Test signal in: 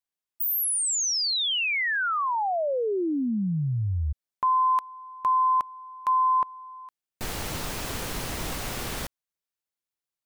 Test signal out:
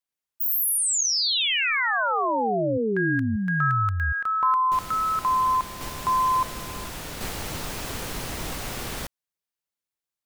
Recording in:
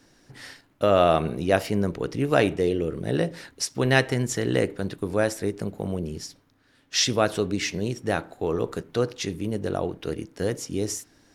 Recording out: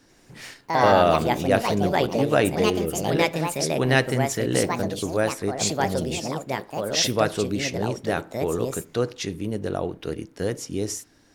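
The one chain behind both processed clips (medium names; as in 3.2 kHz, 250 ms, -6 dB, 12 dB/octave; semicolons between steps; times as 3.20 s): ever faster or slower copies 88 ms, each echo +4 st, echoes 2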